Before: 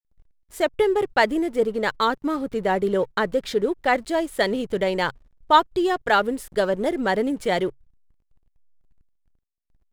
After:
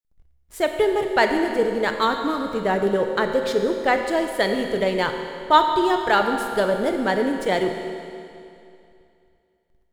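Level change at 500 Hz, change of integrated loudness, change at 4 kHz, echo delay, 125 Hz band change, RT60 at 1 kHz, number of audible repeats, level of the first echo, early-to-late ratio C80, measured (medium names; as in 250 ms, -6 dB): +1.5 dB, +1.0 dB, +1.5 dB, no echo, +1.0 dB, 2.6 s, no echo, no echo, 6.0 dB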